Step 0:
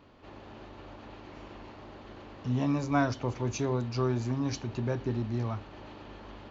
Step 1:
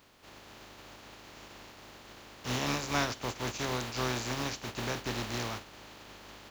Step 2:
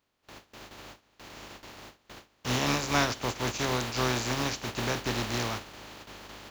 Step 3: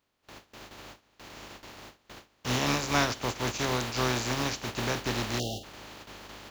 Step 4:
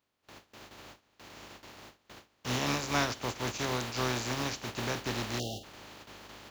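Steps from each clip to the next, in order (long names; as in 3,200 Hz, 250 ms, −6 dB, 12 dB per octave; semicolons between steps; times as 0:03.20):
compressing power law on the bin magnitudes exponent 0.41; level −4 dB
noise gate with hold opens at −40 dBFS; level +4.5 dB
time-frequency box erased 0:05.39–0:05.64, 800–2,700 Hz
high-pass filter 49 Hz; level −3.5 dB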